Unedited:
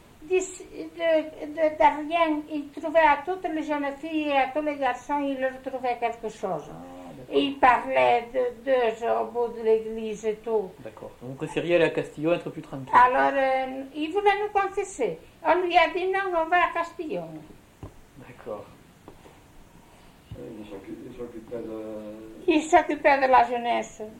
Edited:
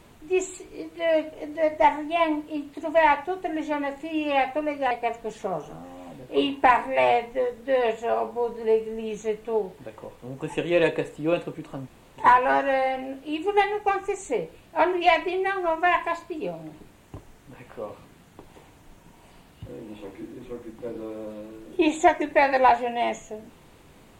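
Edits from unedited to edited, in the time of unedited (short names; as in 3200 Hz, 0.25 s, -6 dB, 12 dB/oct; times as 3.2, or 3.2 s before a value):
4.91–5.9 cut
12.86 insert room tone 0.30 s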